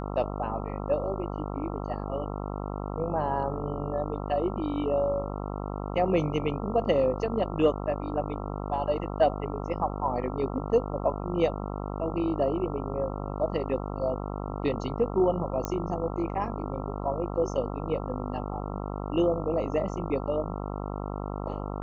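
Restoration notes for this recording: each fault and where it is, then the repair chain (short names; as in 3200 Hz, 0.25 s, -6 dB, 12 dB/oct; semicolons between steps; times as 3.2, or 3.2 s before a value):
buzz 50 Hz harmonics 27 -34 dBFS
15.65 pop -15 dBFS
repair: de-click; de-hum 50 Hz, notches 27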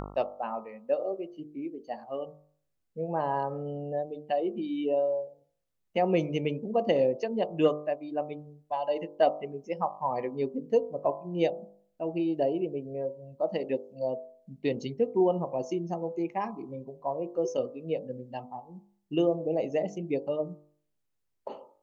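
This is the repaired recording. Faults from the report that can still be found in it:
none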